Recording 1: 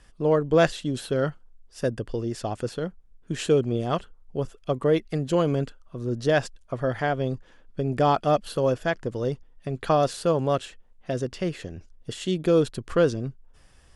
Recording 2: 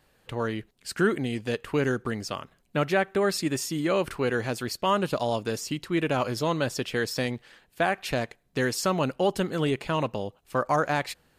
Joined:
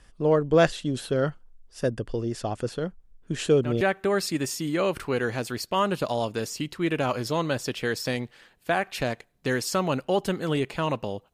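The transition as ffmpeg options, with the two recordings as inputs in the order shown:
-filter_complex "[1:a]asplit=2[s0][s1];[0:a]apad=whole_dur=11.33,atrim=end=11.33,atrim=end=3.812[s2];[s1]atrim=start=2.918:end=10.44[s3];[s0]atrim=start=2.51:end=2.92,asetpts=PTS-STARTPTS,volume=0.299,afade=t=in:d=0.004:c=hsin,afade=t=out:st=0.406:d=0.004:c=hsin,adelay=3400[s4];[s2][s3]acrossfade=d=0.004:c1=hsin:c2=hsin[s5];[s5][s4]amix=inputs=2:normalize=0"

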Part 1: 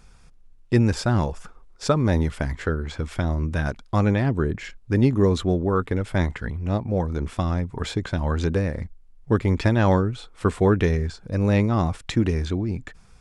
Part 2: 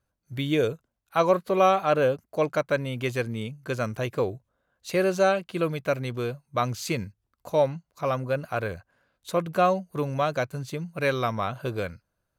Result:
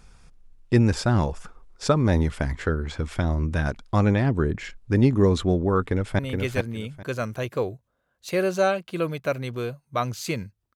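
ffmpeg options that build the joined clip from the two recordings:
-filter_complex "[0:a]apad=whole_dur=10.75,atrim=end=10.75,atrim=end=6.192[s0];[1:a]atrim=start=2.798:end=7.36[s1];[s0][s1]acrossfade=d=0.004:c1=hsin:c2=hsin,asplit=2[s2][s3];[s3]afade=t=in:st=5.81:d=0.01,afade=t=out:st=6.19:d=0.01,aecho=0:1:420|840|1260:0.595662|0.119132|0.0238265[s4];[s2][s4]amix=inputs=2:normalize=0"

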